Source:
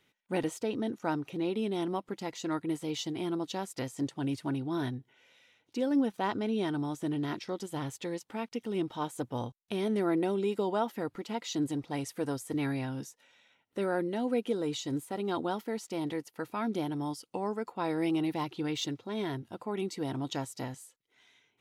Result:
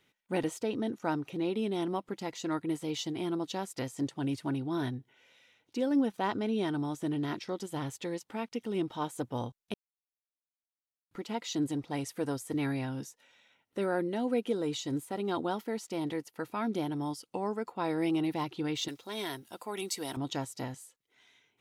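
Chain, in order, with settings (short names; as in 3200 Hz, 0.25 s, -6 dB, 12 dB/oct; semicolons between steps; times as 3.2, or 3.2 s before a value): 9.74–11.11 mute; 18.88–20.17 RIAA curve recording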